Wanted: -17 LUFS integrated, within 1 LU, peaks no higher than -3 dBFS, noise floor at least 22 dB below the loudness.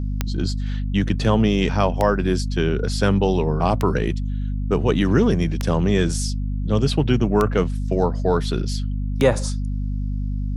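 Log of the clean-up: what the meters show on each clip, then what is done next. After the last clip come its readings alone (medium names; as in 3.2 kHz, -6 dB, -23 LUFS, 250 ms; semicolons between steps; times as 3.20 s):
clicks found 6; hum 50 Hz; highest harmonic 250 Hz; hum level -21 dBFS; loudness -21.5 LUFS; peak level -4.0 dBFS; loudness target -17.0 LUFS
-> de-click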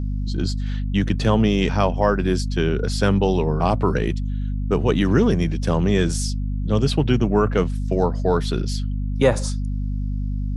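clicks found 0; hum 50 Hz; highest harmonic 250 Hz; hum level -21 dBFS
-> de-hum 50 Hz, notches 5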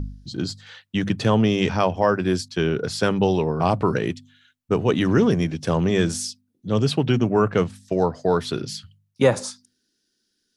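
hum not found; loudness -22.0 LUFS; peak level -5.0 dBFS; loudness target -17.0 LUFS
-> trim +5 dB; peak limiter -3 dBFS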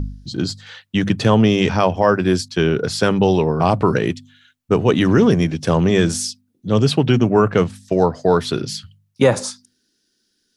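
loudness -17.5 LUFS; peak level -3.0 dBFS; noise floor -68 dBFS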